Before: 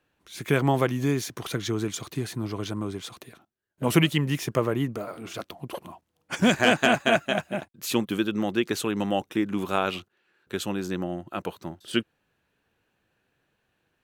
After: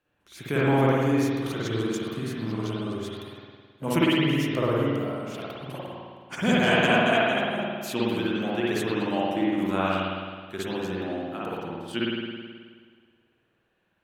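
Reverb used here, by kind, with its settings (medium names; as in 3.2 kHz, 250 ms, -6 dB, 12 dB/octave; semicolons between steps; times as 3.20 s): spring tank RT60 1.7 s, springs 53 ms, chirp 75 ms, DRR -7 dB; trim -6.5 dB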